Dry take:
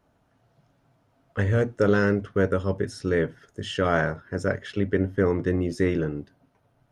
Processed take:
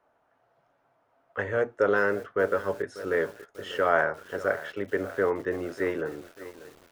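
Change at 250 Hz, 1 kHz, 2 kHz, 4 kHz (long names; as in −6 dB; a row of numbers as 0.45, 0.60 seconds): −9.5, +2.0, +1.0, −6.0 decibels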